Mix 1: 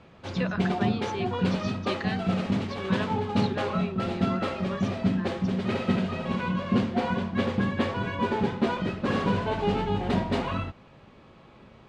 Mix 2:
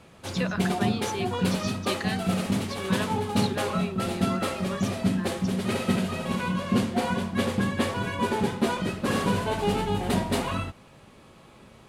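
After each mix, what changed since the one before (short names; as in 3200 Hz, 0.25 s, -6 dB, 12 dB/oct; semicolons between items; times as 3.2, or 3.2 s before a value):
master: remove air absorption 160 m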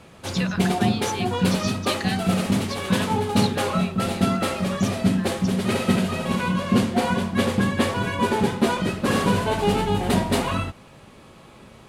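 speech: add tilt shelf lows -6 dB, about 1200 Hz; background +4.5 dB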